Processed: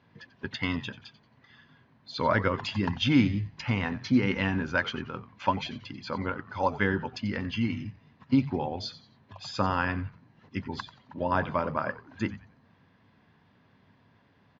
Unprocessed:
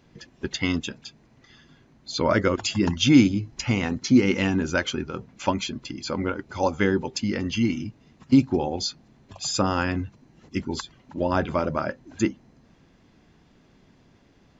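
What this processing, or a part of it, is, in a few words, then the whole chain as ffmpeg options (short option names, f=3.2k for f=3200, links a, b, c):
frequency-shifting delay pedal into a guitar cabinet: -filter_complex "[0:a]asplit=4[a][b][c][d];[b]adelay=90,afreqshift=-130,volume=-15dB[e];[c]adelay=180,afreqshift=-260,volume=-25.2dB[f];[d]adelay=270,afreqshift=-390,volume=-35.3dB[g];[a][e][f][g]amix=inputs=4:normalize=0,highpass=99,equalizer=f=100:t=q:w=4:g=8,equalizer=f=340:t=q:w=4:g=-7,equalizer=f=1k:t=q:w=4:g=7,equalizer=f=1.7k:t=q:w=4:g=6,lowpass=f=4.4k:w=0.5412,lowpass=f=4.4k:w=1.3066,volume=-5dB"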